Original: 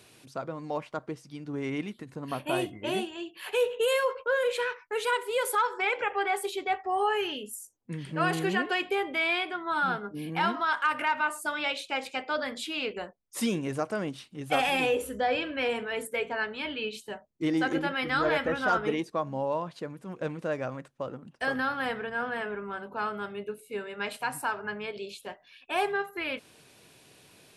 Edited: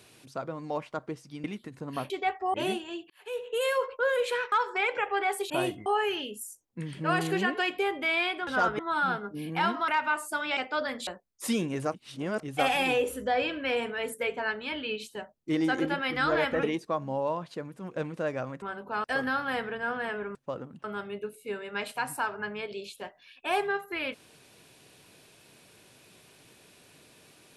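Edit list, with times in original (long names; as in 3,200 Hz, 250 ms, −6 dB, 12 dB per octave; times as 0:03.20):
0:01.44–0:01.79: remove
0:02.45–0:02.81: swap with 0:06.54–0:06.98
0:03.37–0:04.08: fade in
0:04.79–0:05.56: remove
0:10.68–0:11.01: remove
0:11.70–0:12.14: remove
0:12.64–0:13.00: remove
0:13.87–0:14.36: reverse
0:18.56–0:18.88: move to 0:09.59
0:20.87–0:21.36: swap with 0:22.67–0:23.09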